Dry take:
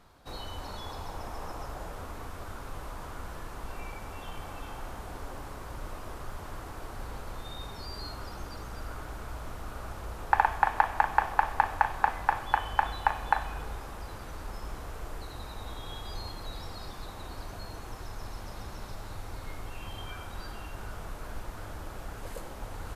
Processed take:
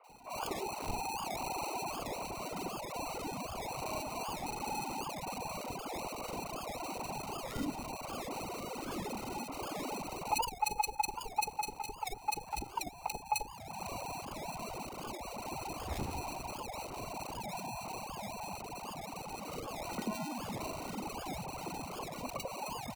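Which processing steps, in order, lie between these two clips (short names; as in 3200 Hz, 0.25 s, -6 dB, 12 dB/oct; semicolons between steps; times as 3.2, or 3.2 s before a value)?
sine-wave speech; dynamic EQ 1100 Hz, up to +5 dB, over -43 dBFS, Q 4; compressor 5:1, threshold -47 dBFS, peak gain reduction 28 dB; sample-and-hold 26×; three bands offset in time mids, highs, lows 40/90 ms, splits 610/2100 Hz; record warp 78 rpm, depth 250 cents; gain +14 dB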